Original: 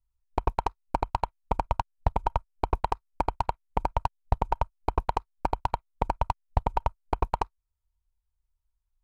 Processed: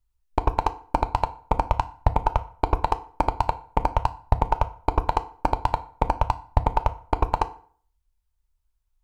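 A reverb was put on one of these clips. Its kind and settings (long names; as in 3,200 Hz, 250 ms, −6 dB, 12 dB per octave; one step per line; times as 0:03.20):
feedback delay network reverb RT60 0.49 s, low-frequency decay 1×, high-frequency decay 0.75×, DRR 10 dB
level +4.5 dB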